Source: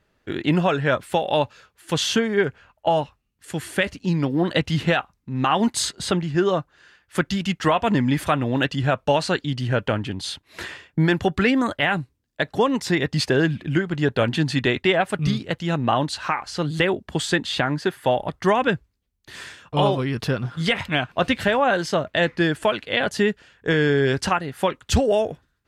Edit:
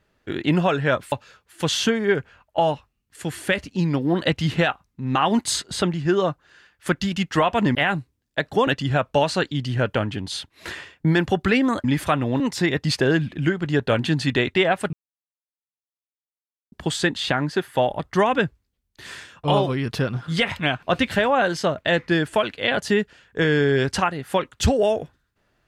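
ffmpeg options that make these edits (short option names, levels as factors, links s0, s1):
-filter_complex "[0:a]asplit=8[s0][s1][s2][s3][s4][s5][s6][s7];[s0]atrim=end=1.122[s8];[s1]atrim=start=1.408:end=8.042[s9];[s2]atrim=start=11.768:end=12.692[s10];[s3]atrim=start=8.598:end=11.772[s11];[s4]atrim=start=8.038:end=8.602[s12];[s5]atrim=start=12.688:end=15.22,asetpts=PTS-STARTPTS,afade=t=out:st=2.528:d=0.004:c=hsin[s13];[s6]atrim=start=15.22:end=17.01,asetpts=PTS-STARTPTS,volume=0[s14];[s7]atrim=start=17.01,asetpts=PTS-STARTPTS,afade=t=in:d=0.004:c=hsin[s15];[s8][s9]acrossfade=d=0.004:c1=hsin:c2=hsin[s16];[s16][s10]acrossfade=d=0.004:c1=hsin:c2=hsin[s17];[s17][s11]acrossfade=d=0.004:c1=hsin:c2=hsin[s18];[s18][s12]acrossfade=d=0.004:c1=hsin:c2=hsin[s19];[s13][s14][s15]concat=n=3:v=0:a=1[s20];[s19][s20]acrossfade=d=0.004:c1=hsin:c2=hsin"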